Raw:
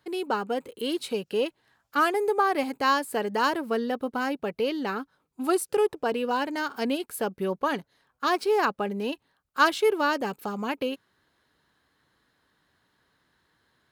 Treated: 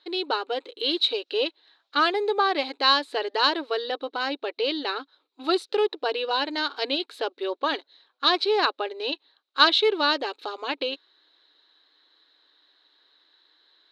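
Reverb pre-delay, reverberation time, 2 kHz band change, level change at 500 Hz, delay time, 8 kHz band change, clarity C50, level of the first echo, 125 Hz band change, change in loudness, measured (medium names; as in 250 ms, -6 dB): no reverb, no reverb, +2.0 dB, 0.0 dB, no echo, under -10 dB, no reverb, no echo, no reading, +2.5 dB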